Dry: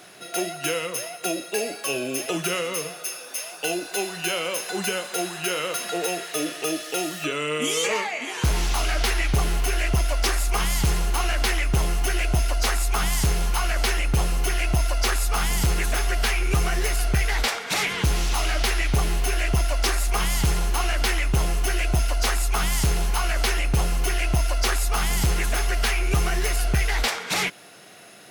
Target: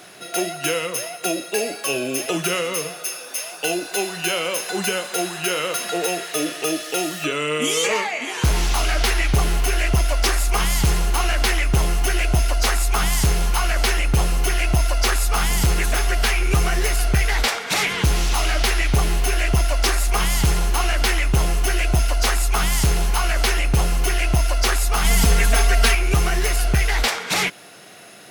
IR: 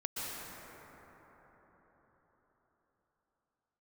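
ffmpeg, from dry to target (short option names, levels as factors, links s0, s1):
-filter_complex "[0:a]asettb=1/sr,asplit=3[s0][s1][s2];[s0]atrim=end=25.044[s3];[s1]atrim=start=25.04:end=25.95,asetpts=PTS-STARTPTS,afade=t=in:d=0.004:c=qsin,afade=t=out:st=0.906:d=0.004:c=qsin,aecho=1:1:4.4:0.95,atrim=end_sample=40131[s4];[s2]atrim=start=25.946[s5];[s3][s4]acrossfade=d=0.004:c1=hsin:c2=qsin[s6];[s6][s5]acrossfade=d=0.004:c1=qsin:c2=hsin,volume=1.5"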